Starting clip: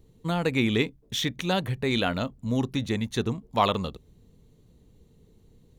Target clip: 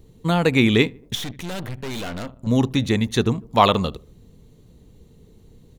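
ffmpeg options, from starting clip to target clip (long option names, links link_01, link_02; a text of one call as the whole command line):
ffmpeg -i in.wav -filter_complex "[0:a]asplit=2[link_01][link_02];[link_02]adelay=76,lowpass=frequency=1400:poles=1,volume=-24dB,asplit=2[link_03][link_04];[link_04]adelay=76,lowpass=frequency=1400:poles=1,volume=0.53,asplit=2[link_05][link_06];[link_06]adelay=76,lowpass=frequency=1400:poles=1,volume=0.53[link_07];[link_01][link_03][link_05][link_07]amix=inputs=4:normalize=0,asettb=1/sr,asplit=3[link_08][link_09][link_10];[link_08]atrim=end=1.154[link_11];[link_09]atrim=start=1.15:end=2.47,asetpts=PTS-STARTPTS,afade=type=in:duration=0.004:curve=qsin,afade=type=out:start_time=1.316:duration=0.004:curve=qsin,aeval=exprs='(tanh(63.1*val(0)+0.8)-tanh(0.8))/63.1':channel_layout=same[link_12];[link_10]atrim=start=2.466[link_13];[link_11][link_12]acrossfade=duration=0.004:curve1=hsin:curve2=qsin[link_14];[link_14][link_13]acrossfade=duration=0.004:curve1=qsin:curve2=hsin,volume=7.5dB" out.wav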